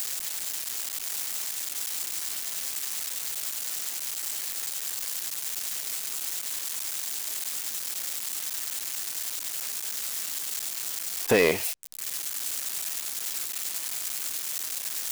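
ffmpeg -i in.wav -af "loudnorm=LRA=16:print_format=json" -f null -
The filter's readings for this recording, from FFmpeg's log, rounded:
"input_i" : "-29.1",
"input_tp" : "-13.0",
"input_lra" : "2.2",
"input_thresh" : "-39.1",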